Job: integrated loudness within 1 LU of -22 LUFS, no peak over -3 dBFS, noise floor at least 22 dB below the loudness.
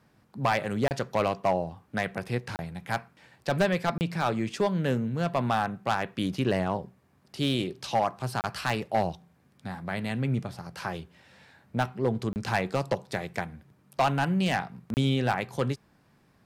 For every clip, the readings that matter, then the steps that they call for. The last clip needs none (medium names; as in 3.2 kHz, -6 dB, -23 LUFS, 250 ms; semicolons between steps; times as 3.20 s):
clipped samples 0.5%; clipping level -17.0 dBFS; dropouts 6; longest dropout 29 ms; loudness -29.5 LUFS; peak level -17.0 dBFS; loudness target -22.0 LUFS
-> clip repair -17 dBFS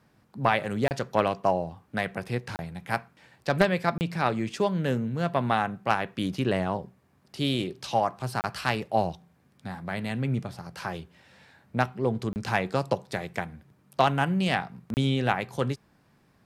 clipped samples 0.0%; dropouts 6; longest dropout 29 ms
-> interpolate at 0.88/2.56/3.98/8.41/12.33/14.94 s, 29 ms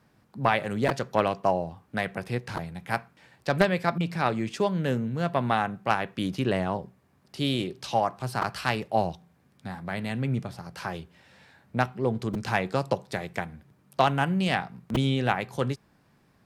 dropouts 0; loudness -28.5 LUFS; peak level -8.0 dBFS; loudness target -22.0 LUFS
-> trim +6.5 dB; peak limiter -3 dBFS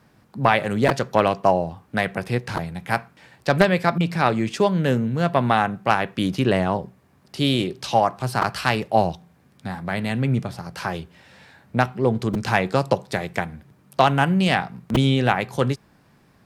loudness -22.0 LUFS; peak level -3.0 dBFS; noise floor -57 dBFS